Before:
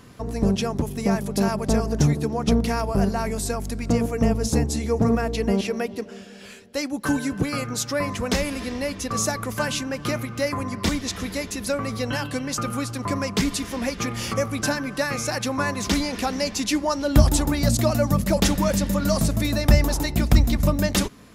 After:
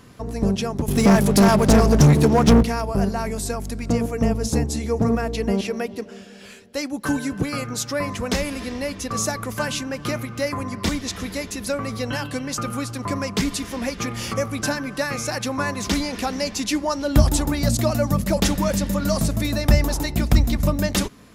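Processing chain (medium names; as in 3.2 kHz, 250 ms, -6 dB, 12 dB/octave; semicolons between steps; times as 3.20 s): 0.88–2.63 s: waveshaping leveller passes 3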